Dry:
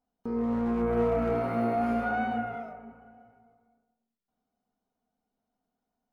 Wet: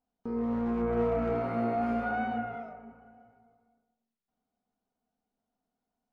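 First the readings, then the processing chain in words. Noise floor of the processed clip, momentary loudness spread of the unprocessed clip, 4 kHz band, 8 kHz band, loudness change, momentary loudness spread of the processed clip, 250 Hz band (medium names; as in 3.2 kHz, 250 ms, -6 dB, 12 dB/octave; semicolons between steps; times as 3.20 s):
under -85 dBFS, 11 LU, -3.0 dB, no reading, -2.0 dB, 11 LU, -2.0 dB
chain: distance through air 53 m; trim -2 dB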